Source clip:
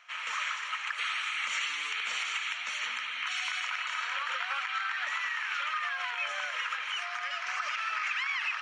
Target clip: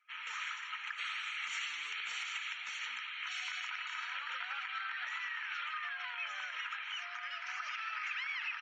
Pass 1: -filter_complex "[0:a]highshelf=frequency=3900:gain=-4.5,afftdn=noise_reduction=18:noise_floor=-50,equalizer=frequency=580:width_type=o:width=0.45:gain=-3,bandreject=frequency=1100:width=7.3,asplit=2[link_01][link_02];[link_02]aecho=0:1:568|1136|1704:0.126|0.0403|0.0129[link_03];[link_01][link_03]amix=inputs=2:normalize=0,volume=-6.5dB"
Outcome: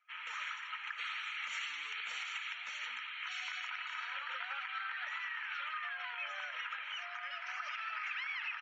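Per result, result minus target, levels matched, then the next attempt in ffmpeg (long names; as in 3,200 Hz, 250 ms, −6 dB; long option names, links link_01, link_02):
500 Hz band +6.0 dB; 8,000 Hz band −3.5 dB
-filter_complex "[0:a]highshelf=frequency=3900:gain=-4.5,afftdn=noise_reduction=18:noise_floor=-50,equalizer=frequency=580:width_type=o:width=0.45:gain=-11.5,bandreject=frequency=1100:width=7.3,asplit=2[link_01][link_02];[link_02]aecho=0:1:568|1136|1704:0.126|0.0403|0.0129[link_03];[link_01][link_03]amix=inputs=2:normalize=0,volume=-6.5dB"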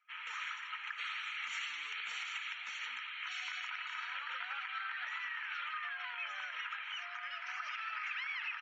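8,000 Hz band −3.5 dB
-filter_complex "[0:a]afftdn=noise_reduction=18:noise_floor=-50,equalizer=frequency=580:width_type=o:width=0.45:gain=-11.5,bandreject=frequency=1100:width=7.3,asplit=2[link_01][link_02];[link_02]aecho=0:1:568|1136|1704:0.126|0.0403|0.0129[link_03];[link_01][link_03]amix=inputs=2:normalize=0,volume=-6.5dB"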